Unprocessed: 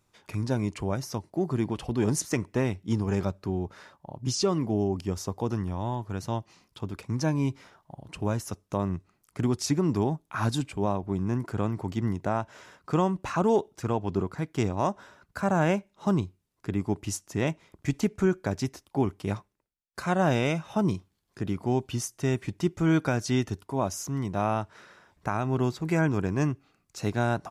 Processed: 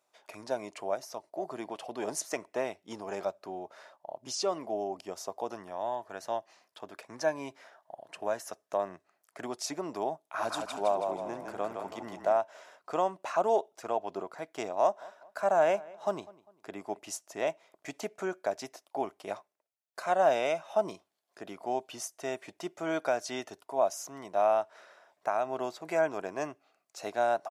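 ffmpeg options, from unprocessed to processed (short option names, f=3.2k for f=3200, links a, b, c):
-filter_complex "[0:a]asettb=1/sr,asplit=3[a][b][c];[a]atrim=end=0.954[d];[b]atrim=start=0.95:end=1.43,asetpts=PTS-STARTPTS,afade=t=in:d=0.004:c=qsin,afade=t=out:st=0.476:d=0.004:c=qsin,tremolo=f=240:d=0.462[e];[c]atrim=start=1.426[f];[d][e]acrossfade=d=0.004:c1=hsin:c2=qsin[g];[g][f]acrossfade=d=0.004:c1=qsin:c2=hsin,asettb=1/sr,asplit=3[h][i][j];[h]atrim=end=5.664[k];[i]atrim=start=5.66:end=9.45,asetpts=PTS-STARTPTS,afade=t=in:d=0.004:c=qsin,afade=t=out:st=3.786:d=0.004:c=qsin,equalizer=f=1.7k:w=4.8:g=8[l];[j]atrim=start=9.446[m];[k][l]acrossfade=d=0.004:c1=hsin:c2=qsin[n];[n][m]acrossfade=d=0.004:c1=qsin:c2=hsin,asplit=3[o][p][q];[o]afade=t=out:st=10.38:d=0.02[r];[p]asplit=7[s][t][u][v][w][x][y];[t]adelay=162,afreqshift=-32,volume=-4.5dB[z];[u]adelay=324,afreqshift=-64,volume=-10.5dB[aa];[v]adelay=486,afreqshift=-96,volume=-16.5dB[ab];[w]adelay=648,afreqshift=-128,volume=-22.6dB[ac];[x]adelay=810,afreqshift=-160,volume=-28.6dB[ad];[y]adelay=972,afreqshift=-192,volume=-34.6dB[ae];[s][z][aa][ab][ac][ad][ae]amix=inputs=7:normalize=0,afade=t=in:st=10.38:d=0.02,afade=t=out:st=12.37:d=0.02[af];[q]afade=t=in:st=12.37:d=0.02[ag];[r][af][ag]amix=inputs=3:normalize=0,asettb=1/sr,asplit=3[ah][ai][aj];[ah]atrim=end=14.814[ak];[ai]atrim=start=14.81:end=16.99,asetpts=PTS-STARTPTS,afade=t=in:d=0.004:c=qsin,afade=t=out:st=2.176:d=0.004:c=qsin,asplit=2[al][am];[am]adelay=200,lowpass=f=3.1k:p=1,volume=-21dB,asplit=2[an][ao];[ao]adelay=200,lowpass=f=3.1k:p=1,volume=0.37,asplit=2[ap][aq];[aq]adelay=200,lowpass=f=3.1k:p=1,volume=0.37[ar];[al][an][ap][ar]amix=inputs=4:normalize=0,atrim=end_sample=96138[as];[aj]atrim=start=16.986[at];[ak][as]acrossfade=d=0.004:c1=hsin:c2=qsin[au];[au][at]acrossfade=d=0.004:c1=qsin:c2=hsin,highpass=480,equalizer=f=650:w=2.9:g=12.5,volume=-4.5dB"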